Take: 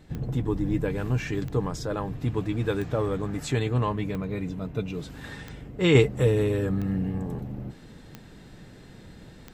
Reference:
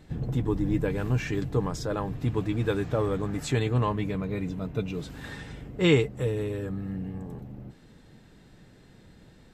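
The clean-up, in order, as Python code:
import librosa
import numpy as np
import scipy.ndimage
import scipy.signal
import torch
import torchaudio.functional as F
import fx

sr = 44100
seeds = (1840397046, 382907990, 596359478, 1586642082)

y = fx.fix_declick_ar(x, sr, threshold=10.0)
y = fx.gain(y, sr, db=fx.steps((0.0, 0.0), (5.95, -6.5)))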